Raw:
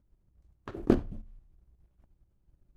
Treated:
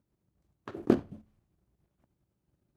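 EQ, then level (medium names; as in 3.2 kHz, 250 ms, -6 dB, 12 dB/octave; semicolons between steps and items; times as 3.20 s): high-pass 130 Hz 12 dB/octave; 0.0 dB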